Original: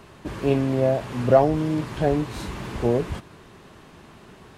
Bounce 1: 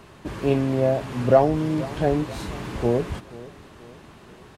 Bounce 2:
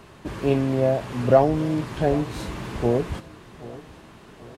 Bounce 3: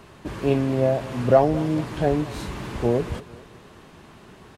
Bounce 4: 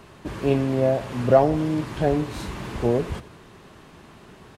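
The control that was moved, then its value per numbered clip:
repeating echo, delay time: 482, 786, 218, 87 milliseconds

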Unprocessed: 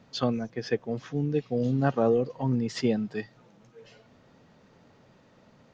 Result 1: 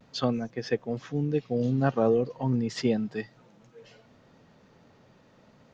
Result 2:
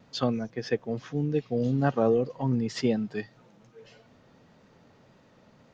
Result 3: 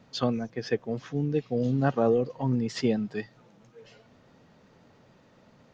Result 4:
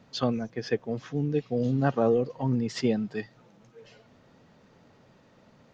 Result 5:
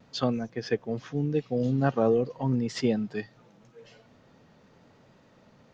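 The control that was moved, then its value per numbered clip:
pitch vibrato, speed: 0.36, 1.8, 7.5, 13, 0.84 Hertz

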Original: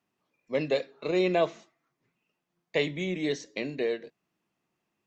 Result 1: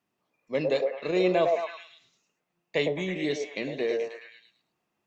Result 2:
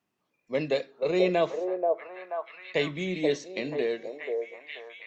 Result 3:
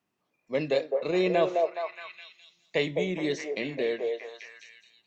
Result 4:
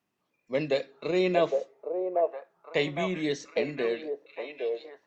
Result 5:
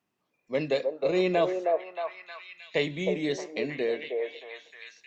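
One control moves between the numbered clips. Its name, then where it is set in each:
echo through a band-pass that steps, delay time: 107, 482, 209, 810, 313 milliseconds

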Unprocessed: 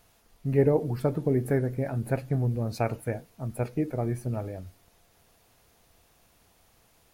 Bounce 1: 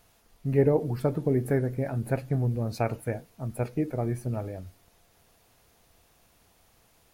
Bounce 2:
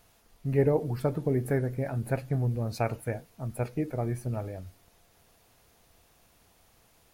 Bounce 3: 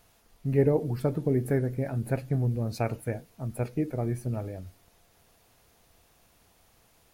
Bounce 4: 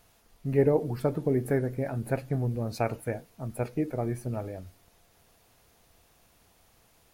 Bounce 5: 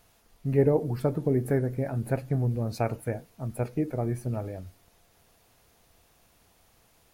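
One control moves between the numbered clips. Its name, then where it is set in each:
dynamic equaliser, frequency: 8,300, 280, 940, 110, 3,000 Hertz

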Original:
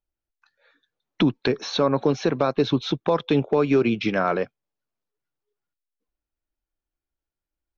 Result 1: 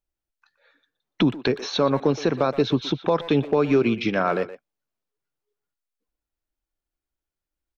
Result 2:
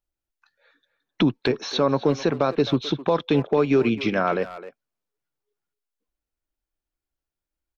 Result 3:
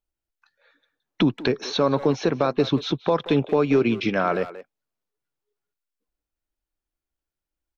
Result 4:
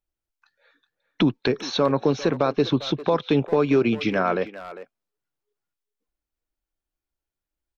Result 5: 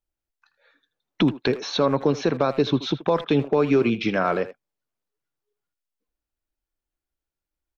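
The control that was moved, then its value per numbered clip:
far-end echo of a speakerphone, delay time: 120, 260, 180, 400, 80 milliseconds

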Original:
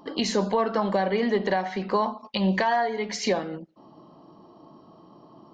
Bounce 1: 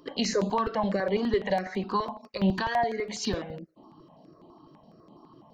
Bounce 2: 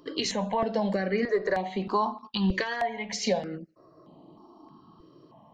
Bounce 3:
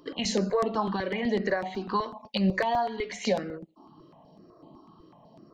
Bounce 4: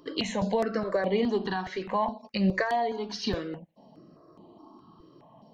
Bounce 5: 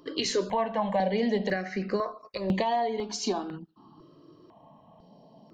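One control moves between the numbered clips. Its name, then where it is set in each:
step-sequenced phaser, speed: 12, 3.2, 8, 4.8, 2 Hertz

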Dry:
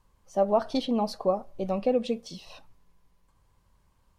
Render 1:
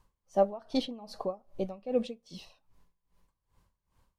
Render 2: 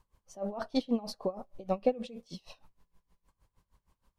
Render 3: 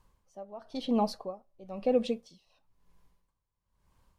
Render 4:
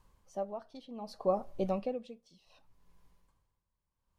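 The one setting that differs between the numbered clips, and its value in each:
tremolo with a sine in dB, speed: 2.5, 6.4, 1, 0.66 Hertz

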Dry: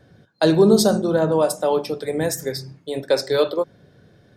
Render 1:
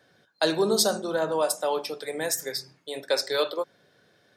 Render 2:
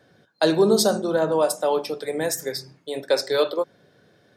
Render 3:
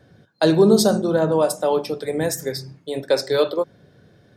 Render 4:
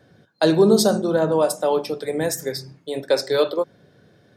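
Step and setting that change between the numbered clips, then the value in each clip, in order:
high-pass filter, corner frequency: 1,100, 410, 40, 150 Hertz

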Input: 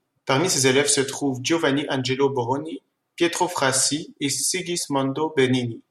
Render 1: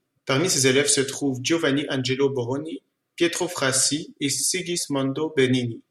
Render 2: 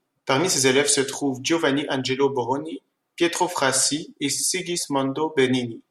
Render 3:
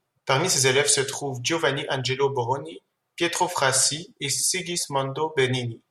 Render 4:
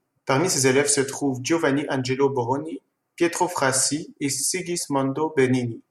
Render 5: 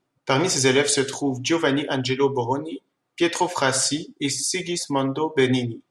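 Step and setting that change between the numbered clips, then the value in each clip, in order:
parametric band, centre frequency: 860, 100, 280, 3,500, 13,000 Hertz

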